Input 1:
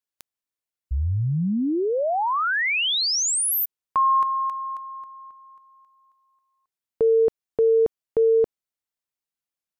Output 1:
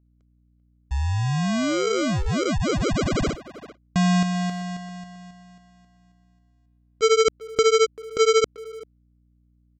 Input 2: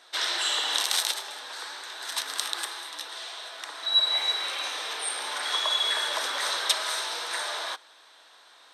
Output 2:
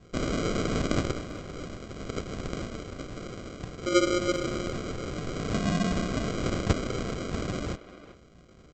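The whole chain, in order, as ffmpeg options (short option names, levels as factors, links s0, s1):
-filter_complex "[0:a]aresample=16000,acrusher=samples=18:mix=1:aa=0.000001,aresample=44100,aeval=exprs='val(0)+0.001*(sin(2*PI*60*n/s)+sin(2*PI*2*60*n/s)/2+sin(2*PI*3*60*n/s)/3+sin(2*PI*4*60*n/s)/4+sin(2*PI*5*60*n/s)/5)':c=same,asplit=2[s0][s1];[s1]adelay=390,highpass=300,lowpass=3400,asoftclip=type=hard:threshold=0.106,volume=0.224[s2];[s0][s2]amix=inputs=2:normalize=0"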